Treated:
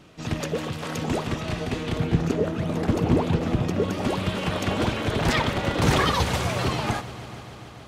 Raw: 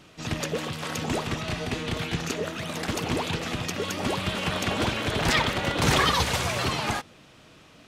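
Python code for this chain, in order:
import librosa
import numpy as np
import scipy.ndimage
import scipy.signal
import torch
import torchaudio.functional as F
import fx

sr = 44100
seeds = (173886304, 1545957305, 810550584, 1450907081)

y = fx.tilt_shelf(x, sr, db=fx.steps((0.0, 3.0), (1.97, 9.5), (3.92, 3.5)), hz=1100.0)
y = fx.echo_heads(y, sr, ms=145, heads='all three', feedback_pct=70, wet_db=-22.0)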